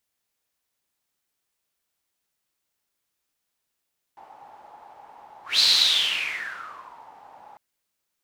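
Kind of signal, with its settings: whoosh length 3.40 s, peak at 1.43 s, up 0.18 s, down 1.61 s, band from 840 Hz, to 4.2 kHz, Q 8.2, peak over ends 30 dB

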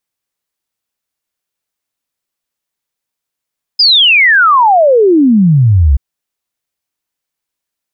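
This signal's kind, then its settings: log sweep 5.1 kHz -> 63 Hz 2.18 s -4 dBFS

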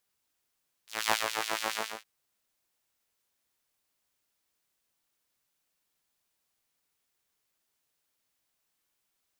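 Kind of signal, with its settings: synth patch with filter wobble A2, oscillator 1 saw, filter highpass, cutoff 1.2 kHz, Q 1, filter envelope 1 oct, attack 238 ms, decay 0.14 s, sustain -6 dB, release 0.29 s, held 0.88 s, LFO 7.2 Hz, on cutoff 1.2 oct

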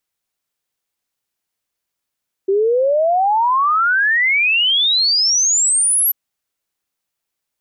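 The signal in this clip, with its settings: log sweep 380 Hz -> 12 kHz 3.64 s -12 dBFS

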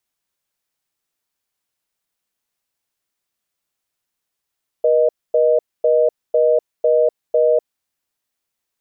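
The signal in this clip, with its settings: call progress tone reorder tone, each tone -14 dBFS 2.86 s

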